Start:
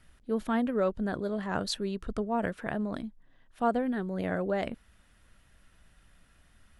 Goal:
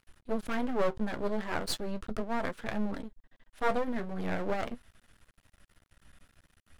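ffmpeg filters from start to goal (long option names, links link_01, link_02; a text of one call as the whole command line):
ffmpeg -i in.wav -af "flanger=delay=7.4:depth=7.5:regen=48:speed=0.41:shape=triangular,aeval=exprs='max(val(0),0)':channel_layout=same,volume=7dB" out.wav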